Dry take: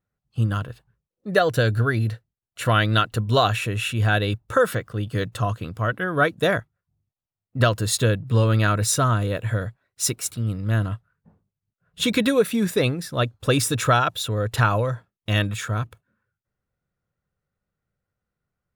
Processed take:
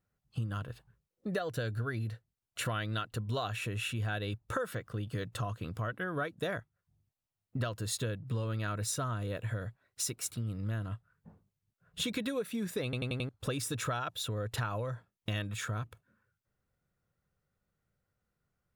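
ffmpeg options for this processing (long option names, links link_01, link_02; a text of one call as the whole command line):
ffmpeg -i in.wav -filter_complex "[0:a]asplit=6[link_01][link_02][link_03][link_04][link_05][link_06];[link_01]atrim=end=12.932[link_07];[link_02]atrim=start=12.838:end=12.932[link_08];[link_03]atrim=start=12.838:end=12.932[link_09];[link_04]atrim=start=12.838:end=12.932[link_10];[link_05]atrim=start=12.838:end=12.932[link_11];[link_06]atrim=start=13.288[link_12];[link_07][link_08]acrossfade=duration=0.004:curve1=hsin:curve2=hsin[link_13];[link_13][link_09]acrossfade=duration=0.004:curve1=hsin:curve2=hsin[link_14];[link_14][link_10]acrossfade=duration=0.004:curve1=hsin:curve2=hsin[link_15];[link_15][link_11]acrossfade=duration=0.004:curve1=hsin:curve2=hsin[link_16];[link_16][link_12]acrossfade=duration=0.004:curve1=hsin:curve2=hsin,acompressor=threshold=-35dB:ratio=4" out.wav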